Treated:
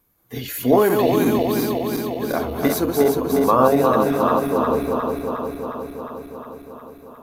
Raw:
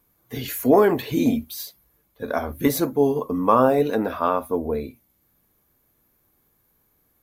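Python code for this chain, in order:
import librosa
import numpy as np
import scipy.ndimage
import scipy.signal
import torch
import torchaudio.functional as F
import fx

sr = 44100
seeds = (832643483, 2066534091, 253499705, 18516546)

y = fx.reverse_delay_fb(x, sr, ms=179, feedback_pct=83, wet_db=-4)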